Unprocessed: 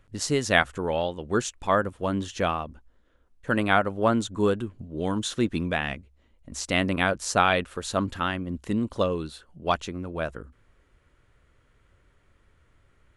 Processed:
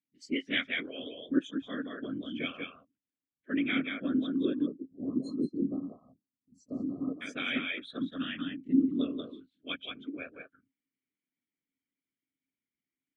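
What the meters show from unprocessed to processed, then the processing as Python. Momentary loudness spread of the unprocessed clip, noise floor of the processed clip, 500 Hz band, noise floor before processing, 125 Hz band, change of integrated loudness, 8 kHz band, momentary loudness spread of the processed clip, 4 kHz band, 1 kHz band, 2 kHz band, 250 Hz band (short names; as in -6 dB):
12 LU, under -85 dBFS, -14.5 dB, -64 dBFS, -16.0 dB, -7.0 dB, under -25 dB, 13 LU, -6.0 dB, -22.0 dB, -9.0 dB, -2.0 dB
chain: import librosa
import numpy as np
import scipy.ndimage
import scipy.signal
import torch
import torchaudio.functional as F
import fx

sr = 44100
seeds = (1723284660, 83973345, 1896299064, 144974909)

p1 = x + fx.echo_single(x, sr, ms=184, db=-4.0, dry=0)
p2 = fx.noise_reduce_blind(p1, sr, reduce_db=26)
p3 = fx.rider(p2, sr, range_db=3, speed_s=0.5)
p4 = p2 + (p3 * 10.0 ** (3.0 / 20.0))
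p5 = fx.whisperise(p4, sr, seeds[0])
p6 = fx.vowel_filter(p5, sr, vowel='i')
p7 = fx.spec_erase(p6, sr, start_s=4.66, length_s=2.56, low_hz=1300.0, high_hz=4100.0)
y = fx.low_shelf(p7, sr, hz=180.0, db=-7.5)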